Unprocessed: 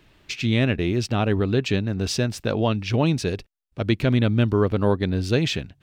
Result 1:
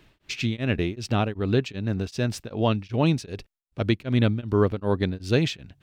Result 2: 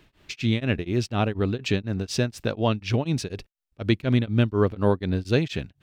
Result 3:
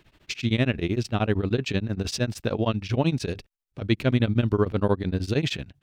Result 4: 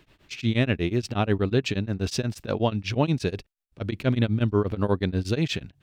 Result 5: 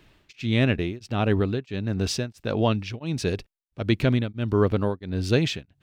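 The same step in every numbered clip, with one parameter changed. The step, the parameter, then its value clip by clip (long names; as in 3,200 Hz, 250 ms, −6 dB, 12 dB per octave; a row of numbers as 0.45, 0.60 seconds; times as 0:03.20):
tremolo along a rectified sine, nulls at: 2.6, 4.1, 13, 8.3, 1.5 Hertz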